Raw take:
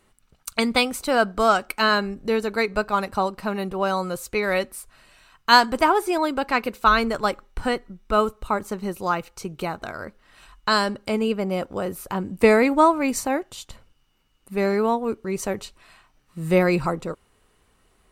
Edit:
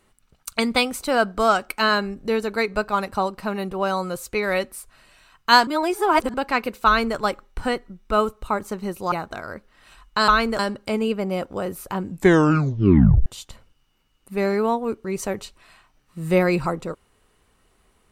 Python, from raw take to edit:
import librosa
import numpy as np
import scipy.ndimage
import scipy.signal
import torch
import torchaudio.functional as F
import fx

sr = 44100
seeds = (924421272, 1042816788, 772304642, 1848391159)

y = fx.edit(x, sr, fx.reverse_span(start_s=5.67, length_s=0.67),
    fx.duplicate(start_s=6.86, length_s=0.31, to_s=10.79),
    fx.cut(start_s=9.12, length_s=0.51),
    fx.tape_stop(start_s=12.26, length_s=1.2), tone=tone)